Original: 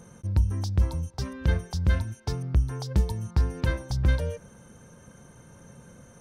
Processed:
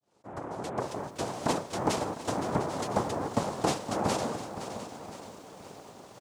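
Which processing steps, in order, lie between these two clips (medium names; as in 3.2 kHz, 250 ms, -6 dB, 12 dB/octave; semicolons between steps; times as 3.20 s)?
fade-in on the opening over 1.14 s; noise-vocoded speech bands 2; on a send: delay 703 ms -14.5 dB; on the sum: bit-crushed delay 516 ms, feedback 55%, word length 9-bit, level -11 dB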